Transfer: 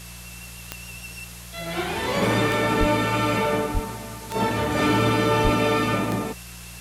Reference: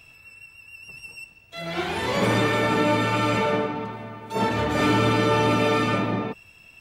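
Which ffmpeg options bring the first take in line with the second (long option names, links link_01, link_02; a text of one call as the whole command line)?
ffmpeg -i in.wav -filter_complex "[0:a]adeclick=threshold=4,bandreject=frequency=58.5:width_type=h:width=4,bandreject=frequency=117:width_type=h:width=4,bandreject=frequency=175.5:width_type=h:width=4,asplit=3[link_01][link_02][link_03];[link_01]afade=type=out:start_time=2.79:duration=0.02[link_04];[link_02]highpass=frequency=140:width=0.5412,highpass=frequency=140:width=1.3066,afade=type=in:start_time=2.79:duration=0.02,afade=type=out:start_time=2.91:duration=0.02[link_05];[link_03]afade=type=in:start_time=2.91:duration=0.02[link_06];[link_04][link_05][link_06]amix=inputs=3:normalize=0,asplit=3[link_07][link_08][link_09];[link_07]afade=type=out:start_time=3.73:duration=0.02[link_10];[link_08]highpass=frequency=140:width=0.5412,highpass=frequency=140:width=1.3066,afade=type=in:start_time=3.73:duration=0.02,afade=type=out:start_time=3.85:duration=0.02[link_11];[link_09]afade=type=in:start_time=3.85:duration=0.02[link_12];[link_10][link_11][link_12]amix=inputs=3:normalize=0,asplit=3[link_13][link_14][link_15];[link_13]afade=type=out:start_time=5.43:duration=0.02[link_16];[link_14]highpass=frequency=140:width=0.5412,highpass=frequency=140:width=1.3066,afade=type=in:start_time=5.43:duration=0.02,afade=type=out:start_time=5.55:duration=0.02[link_17];[link_15]afade=type=in:start_time=5.55:duration=0.02[link_18];[link_16][link_17][link_18]amix=inputs=3:normalize=0,afftdn=noise_reduction=10:noise_floor=-40" out.wav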